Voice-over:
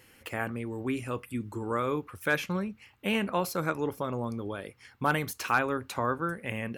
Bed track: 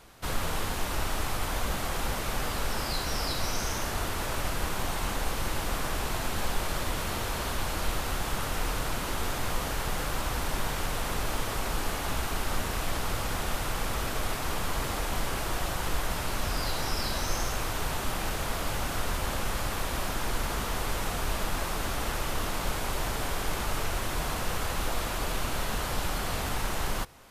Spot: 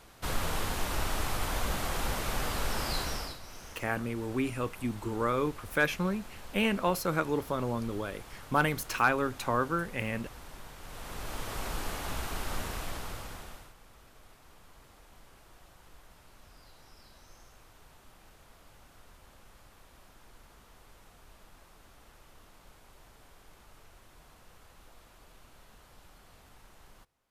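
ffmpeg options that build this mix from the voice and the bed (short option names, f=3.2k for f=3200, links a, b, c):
-filter_complex "[0:a]adelay=3500,volume=0.5dB[a];[1:a]volume=10.5dB,afade=t=out:st=3:d=0.39:silence=0.16788,afade=t=in:st=10.8:d=0.83:silence=0.251189,afade=t=out:st=12.63:d=1.11:silence=0.0891251[b];[a][b]amix=inputs=2:normalize=0"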